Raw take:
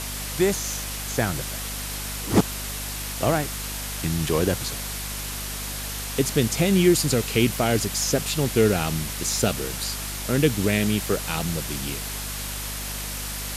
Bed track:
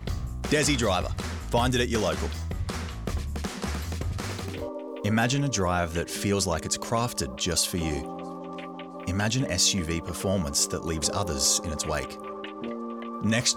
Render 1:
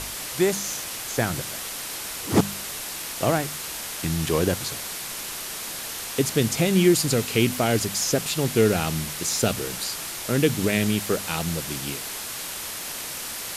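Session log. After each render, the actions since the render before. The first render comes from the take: de-hum 50 Hz, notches 5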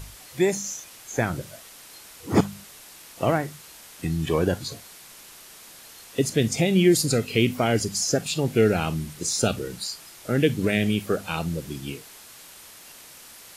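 noise print and reduce 13 dB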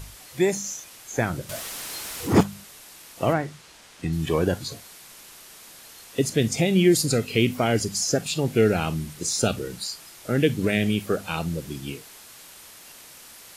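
1.49–2.43 power-law curve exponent 0.7; 3.33–4.13 air absorption 54 m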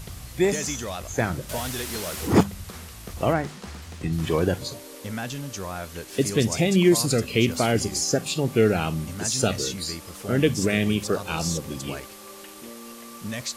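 add bed track -8 dB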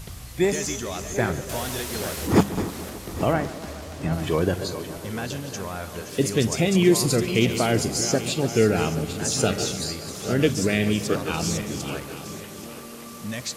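regenerating reverse delay 0.415 s, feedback 58%, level -10.5 dB; tape echo 0.142 s, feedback 88%, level -15 dB, low-pass 2900 Hz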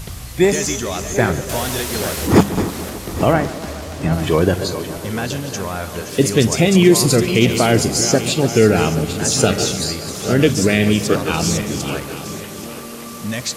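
gain +7.5 dB; limiter -1 dBFS, peak gain reduction 2.5 dB

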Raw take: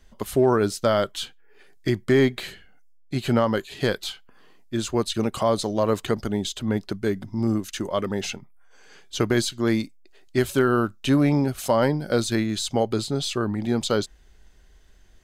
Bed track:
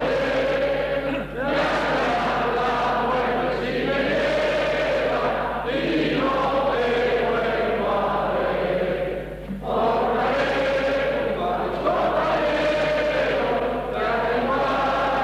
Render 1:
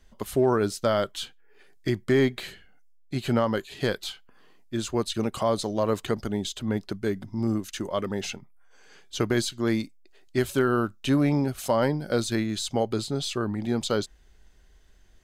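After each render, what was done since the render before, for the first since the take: gain -3 dB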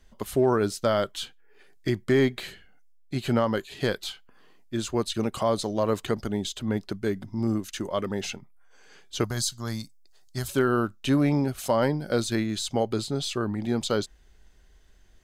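9.24–10.48 EQ curve 150 Hz 0 dB, 340 Hz -16 dB, 720 Hz -3 dB, 1200 Hz -2 dB, 2400 Hz -12 dB, 5000 Hz +5 dB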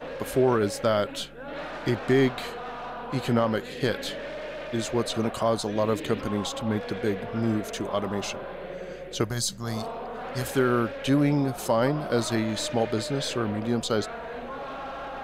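add bed track -14.5 dB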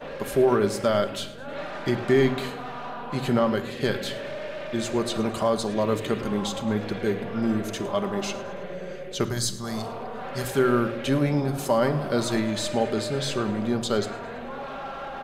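feedback echo 0.108 s, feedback 52%, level -19 dB; shoebox room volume 3200 m³, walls furnished, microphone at 1.2 m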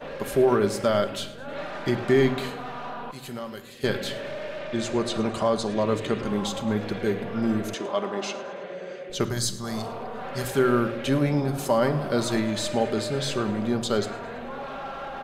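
3.11–3.84 pre-emphasis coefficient 0.8; 4.59–6.28 LPF 8800 Hz; 7.74–9.1 BPF 260–7100 Hz

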